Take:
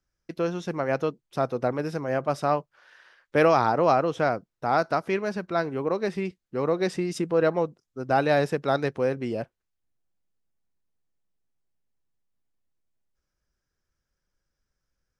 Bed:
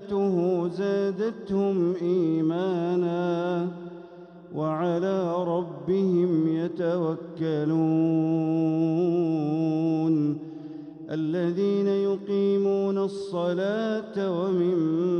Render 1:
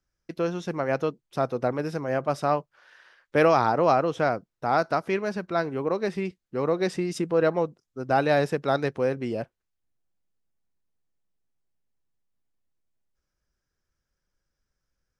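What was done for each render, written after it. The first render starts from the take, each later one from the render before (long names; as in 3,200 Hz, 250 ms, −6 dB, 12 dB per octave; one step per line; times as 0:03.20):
no processing that can be heard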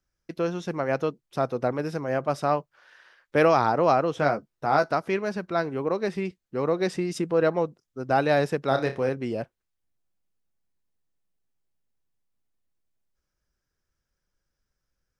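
0:04.18–0:04.89: double-tracking delay 14 ms −6 dB
0:08.68–0:09.09: flutter between parallel walls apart 5.2 metres, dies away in 0.25 s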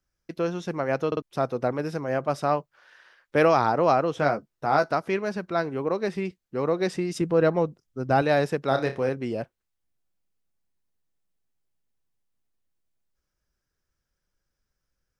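0:01.07: stutter in place 0.05 s, 3 plays
0:07.21–0:08.22: low-shelf EQ 190 Hz +8.5 dB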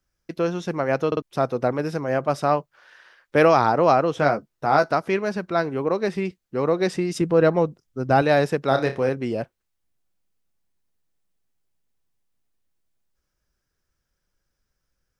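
level +3.5 dB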